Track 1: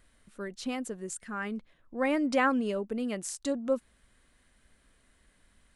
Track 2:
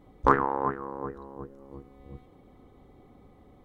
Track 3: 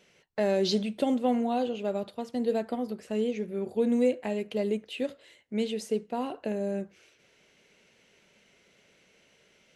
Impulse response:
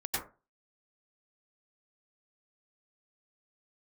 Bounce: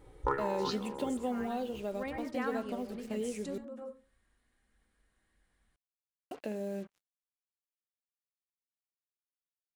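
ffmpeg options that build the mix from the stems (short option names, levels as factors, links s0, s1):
-filter_complex "[0:a]volume=0.473,asplit=2[s0][s1];[s1]volume=0.335[s2];[1:a]aecho=1:1:2.2:0.95,volume=0.631[s3];[2:a]agate=range=0.0224:threshold=0.00316:ratio=3:detection=peak,acrusher=bits=7:mix=0:aa=0.5,volume=0.944,asplit=3[s4][s5][s6];[s4]atrim=end=3.58,asetpts=PTS-STARTPTS,afade=t=out:st=3.576:d=0.004:c=hsin[s7];[s5]atrim=start=3.58:end=6.31,asetpts=PTS-STARTPTS,volume=0[s8];[s6]atrim=start=6.31,asetpts=PTS-STARTPTS,afade=t=in:d=0.004:c=hsin[s9];[s7][s8][s9]concat=n=3:v=0:a=1,asplit=2[s10][s11];[s11]apad=whole_len=253977[s12];[s0][s12]sidechaingate=range=0.0891:threshold=0.01:ratio=16:detection=peak[s13];[3:a]atrim=start_sample=2205[s14];[s2][s14]afir=irnorm=-1:irlink=0[s15];[s13][s3][s10][s15]amix=inputs=4:normalize=0,acompressor=threshold=0.00562:ratio=1.5"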